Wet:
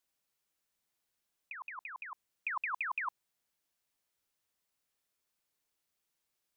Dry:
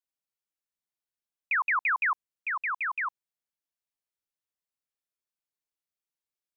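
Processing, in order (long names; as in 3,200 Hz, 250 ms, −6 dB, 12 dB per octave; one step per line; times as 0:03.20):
compressor whose output falls as the input rises −35 dBFS, ratio −0.5
level −1 dB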